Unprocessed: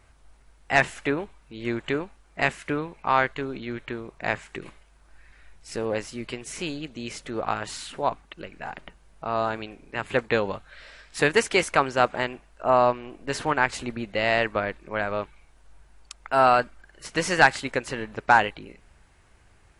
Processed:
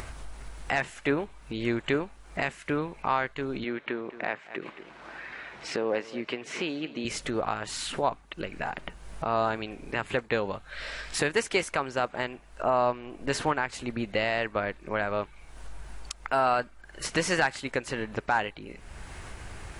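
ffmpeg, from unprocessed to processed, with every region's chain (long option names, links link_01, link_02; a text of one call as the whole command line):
ffmpeg -i in.wav -filter_complex "[0:a]asettb=1/sr,asplit=3[link_01][link_02][link_03];[link_01]atrim=end=3.644[link_04];[link_02]atrim=start=3.64:end=7.05,asetpts=PTS-STARTPTS,afade=type=in:duration=0.004:curve=qsin,afade=type=out:start_time=3.406:duration=0.004:curve=qsin,highpass=240,lowpass=3300,aecho=1:1:222:0.106,atrim=end_sample=150381[link_05];[link_03]atrim=start=7.046[link_06];[link_04][link_05]acrossfade=duration=0.004:curve1=hsin:curve2=qsin[link_07];[link_07][link_06]acrossfade=duration=0.004:curve1=qsin:curve2=hsin,acompressor=mode=upward:threshold=-26dB:ratio=2.5,alimiter=limit=-14dB:level=0:latency=1:release=365" out.wav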